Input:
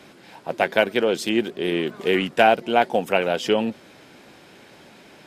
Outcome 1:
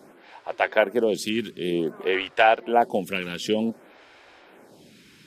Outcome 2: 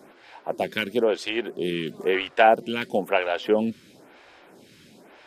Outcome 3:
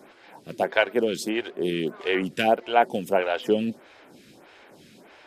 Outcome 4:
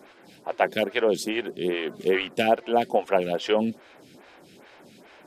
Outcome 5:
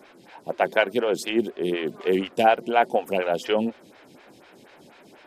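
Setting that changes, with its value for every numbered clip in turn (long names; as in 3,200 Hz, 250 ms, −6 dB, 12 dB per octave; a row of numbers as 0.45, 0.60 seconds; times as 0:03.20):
phaser with staggered stages, speed: 0.54, 1, 1.6, 2.4, 4.1 Hertz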